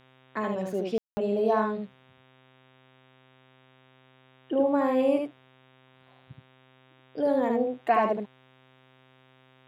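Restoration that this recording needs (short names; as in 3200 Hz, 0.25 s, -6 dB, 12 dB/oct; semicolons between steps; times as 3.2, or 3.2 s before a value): de-hum 130.1 Hz, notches 29; room tone fill 0.98–1.17; inverse comb 74 ms -3.5 dB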